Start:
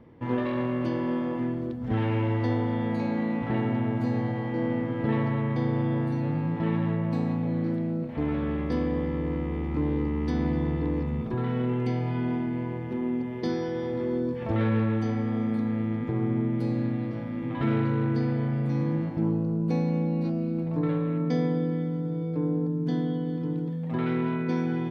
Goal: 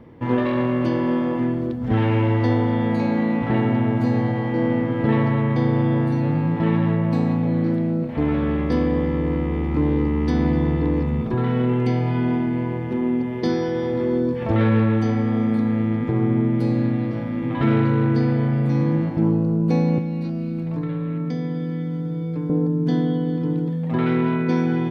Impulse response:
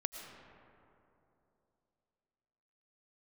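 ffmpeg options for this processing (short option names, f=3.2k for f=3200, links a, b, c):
-filter_complex "[0:a]asettb=1/sr,asplit=3[a][b][c];[a]atrim=end=19.984[d];[b]atrim=start=19.98:end=22.5,asetpts=PTS-STARTPTS,afade=t=in:d=0.004:c=qsin,afade=t=out:st=2.516:d=0.004:c=qsin,acrossover=split=240|1300[e][f][g];[e]acompressor=threshold=-32dB:ratio=4[h];[f]acompressor=threshold=-42dB:ratio=4[i];[g]acompressor=threshold=-53dB:ratio=4[j];[h][i][j]amix=inputs=3:normalize=0[k];[c]atrim=start=22.496[l];[d][k]acrossfade=d=0.004:c1=hsin:c2=qsin[m];[m][l]acrossfade=d=0.004:c1=qsin:c2=hsin,volume=7dB"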